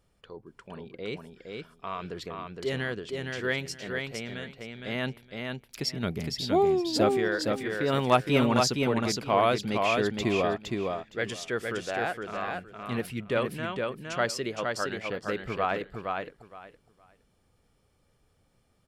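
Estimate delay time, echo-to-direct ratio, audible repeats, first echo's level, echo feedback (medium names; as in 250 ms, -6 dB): 464 ms, -4.0 dB, 3, -4.0 dB, 19%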